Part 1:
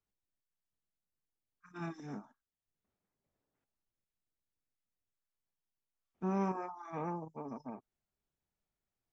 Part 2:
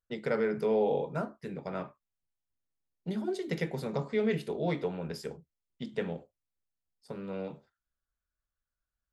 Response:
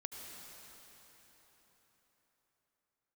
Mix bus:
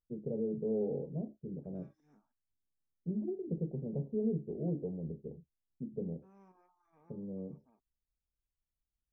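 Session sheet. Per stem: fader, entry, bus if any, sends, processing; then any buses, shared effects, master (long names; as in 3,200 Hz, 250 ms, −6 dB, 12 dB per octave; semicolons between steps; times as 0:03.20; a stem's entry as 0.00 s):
−16.0 dB, 0.00 s, no send, automatic ducking −12 dB, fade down 0.80 s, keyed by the second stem
0.0 dB, 0.00 s, no send, Gaussian smoothing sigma 20 samples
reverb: not used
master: tape wow and flutter 29 cents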